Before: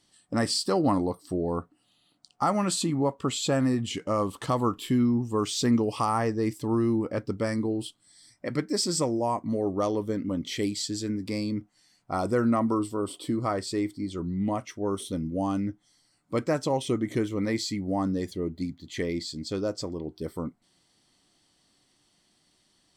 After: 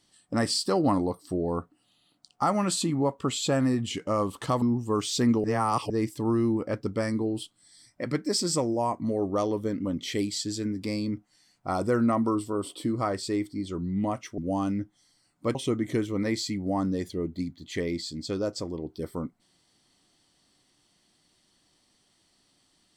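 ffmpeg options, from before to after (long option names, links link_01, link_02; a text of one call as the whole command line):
ffmpeg -i in.wav -filter_complex "[0:a]asplit=6[link_01][link_02][link_03][link_04][link_05][link_06];[link_01]atrim=end=4.622[link_07];[link_02]atrim=start=5.058:end=5.882[link_08];[link_03]atrim=start=5.878:end=6.342,asetpts=PTS-STARTPTS,areverse[link_09];[link_04]atrim=start=6.338:end=14.822[link_10];[link_05]atrim=start=15.258:end=16.432[link_11];[link_06]atrim=start=16.768[link_12];[link_07][link_08]acrossfade=duration=0.004:curve1=hsin:curve2=hsin[link_13];[link_13][link_09]acrossfade=duration=0.004:curve1=hsin:curve2=hsin[link_14];[link_14][link_10]acrossfade=duration=0.004:curve1=hsin:curve2=hsin[link_15];[link_15][link_11]acrossfade=duration=0.004:curve1=hsin:curve2=hsin[link_16];[link_16][link_12]acrossfade=duration=0.004:curve1=hsin:curve2=hsin" out.wav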